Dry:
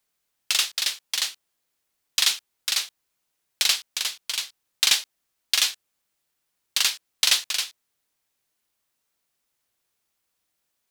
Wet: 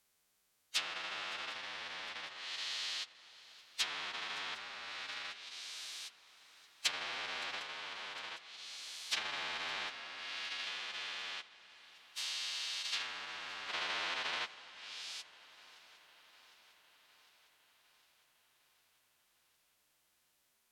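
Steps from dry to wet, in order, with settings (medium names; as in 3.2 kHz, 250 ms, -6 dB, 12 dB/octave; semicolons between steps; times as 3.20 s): spectrogram pixelated in time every 400 ms; low-pass that closes with the level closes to 1.4 kHz, closed at -31 dBFS; time stretch by phase-locked vocoder 1.9×; on a send: shuffle delay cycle 756 ms, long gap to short 3:1, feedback 64%, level -21 dB; on the sum: trim +4 dB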